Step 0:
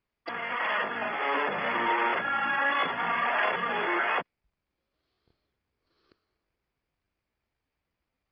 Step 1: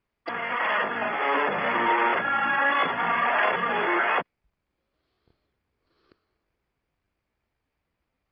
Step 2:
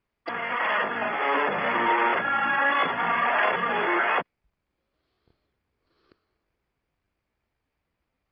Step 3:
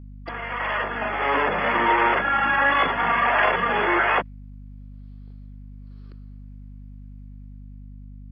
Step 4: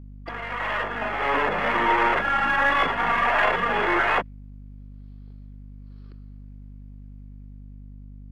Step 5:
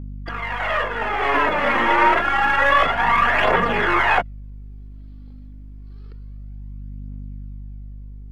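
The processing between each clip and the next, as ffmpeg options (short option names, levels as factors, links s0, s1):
-af "lowpass=f=3300:p=1,volume=1.68"
-af anull
-af "dynaudnorm=f=240:g=9:m=1.88,aeval=exprs='val(0)+0.0141*(sin(2*PI*50*n/s)+sin(2*PI*2*50*n/s)/2+sin(2*PI*3*50*n/s)/3+sin(2*PI*4*50*n/s)/4+sin(2*PI*5*50*n/s)/5)':c=same,volume=0.794"
-af "aeval=exprs='if(lt(val(0),0),0.708*val(0),val(0))':c=same"
-af "aphaser=in_gain=1:out_gain=1:delay=3.8:decay=0.52:speed=0.28:type=triangular,volume=1.41"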